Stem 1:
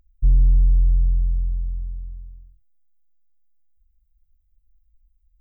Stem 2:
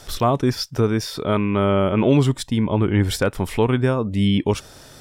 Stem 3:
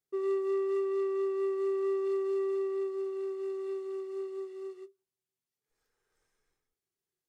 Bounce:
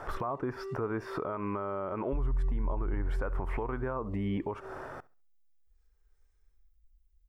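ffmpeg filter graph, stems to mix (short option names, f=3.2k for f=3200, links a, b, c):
-filter_complex "[0:a]adelay=1900,volume=-4.5dB[a];[1:a]acompressor=threshold=-24dB:ratio=6,firequalizer=gain_entry='entry(220,0);entry(330,6);entry(1100,14);entry(3700,-18)':delay=0.05:min_phase=1,volume=-3.5dB,asplit=3[b][c][d];[c]volume=-23dB[e];[2:a]volume=-6dB,asplit=2[f][g];[g]volume=-9.5dB[h];[d]apad=whole_len=321352[i];[f][i]sidechaincompress=threshold=-38dB:ratio=8:attack=16:release=121[j];[e][h]amix=inputs=2:normalize=0,aecho=0:1:68|136|204|272:1|0.24|0.0576|0.0138[k];[a][b][j][k]amix=inputs=4:normalize=0,alimiter=level_in=0.5dB:limit=-24dB:level=0:latency=1:release=206,volume=-0.5dB"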